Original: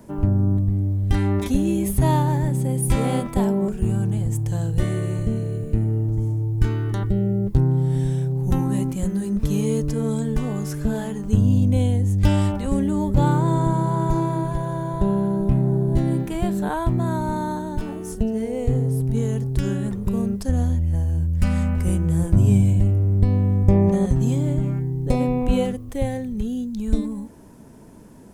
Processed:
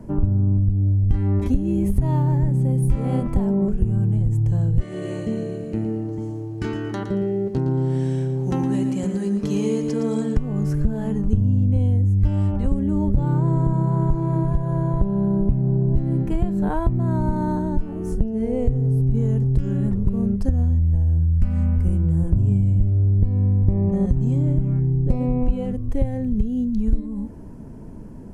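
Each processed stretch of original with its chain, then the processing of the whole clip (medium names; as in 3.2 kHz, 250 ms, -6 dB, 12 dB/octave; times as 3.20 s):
4.81–10.37 s: band-pass 280–6300 Hz + treble shelf 2.5 kHz +11.5 dB + bit-crushed delay 114 ms, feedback 35%, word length 9-bit, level -8 dB
whole clip: tilt EQ -3 dB/octave; band-stop 3.6 kHz, Q 10; compression 4:1, threshold -17 dBFS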